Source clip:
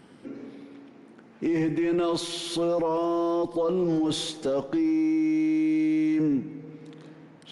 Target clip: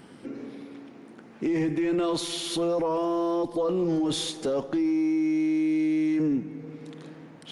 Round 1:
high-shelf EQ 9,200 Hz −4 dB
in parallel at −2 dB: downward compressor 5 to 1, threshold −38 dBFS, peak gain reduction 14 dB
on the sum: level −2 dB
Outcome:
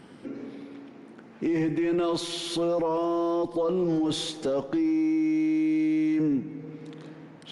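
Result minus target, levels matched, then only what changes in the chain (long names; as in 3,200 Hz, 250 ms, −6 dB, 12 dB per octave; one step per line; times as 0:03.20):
8,000 Hz band −3.0 dB
change: high-shelf EQ 9,200 Hz +5 dB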